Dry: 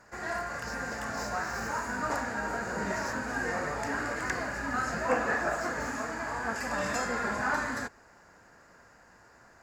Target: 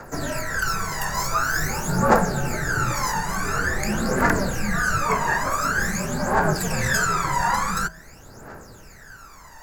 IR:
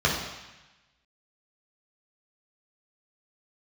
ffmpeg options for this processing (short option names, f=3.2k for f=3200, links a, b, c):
-filter_complex "[0:a]equalizer=f=15k:w=0.6:g=15,bandreject=f=118.7:t=h:w=4,bandreject=f=237.4:t=h:w=4,bandreject=f=356.1:t=h:w=4,bandreject=f=474.8:t=h:w=4,bandreject=f=593.5:t=h:w=4,bandreject=f=712.2:t=h:w=4,bandreject=f=830.9:t=h:w=4,bandreject=f=949.6:t=h:w=4,bandreject=f=1.0683k:t=h:w=4,bandreject=f=1.187k:t=h:w=4,asplit=2[a][b];[b]acompressor=threshold=-39dB:ratio=6,volume=-1.5dB[c];[a][c]amix=inputs=2:normalize=0,afreqshift=-70,aphaser=in_gain=1:out_gain=1:delay=1.1:decay=0.77:speed=0.47:type=triangular,volume=3.5dB"